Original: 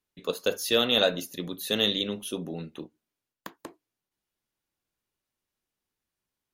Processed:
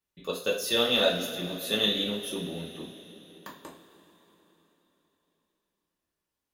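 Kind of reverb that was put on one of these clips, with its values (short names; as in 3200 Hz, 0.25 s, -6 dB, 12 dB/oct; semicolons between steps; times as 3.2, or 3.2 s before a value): two-slope reverb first 0.34 s, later 4 s, from -18 dB, DRR -3.5 dB; gain -5.5 dB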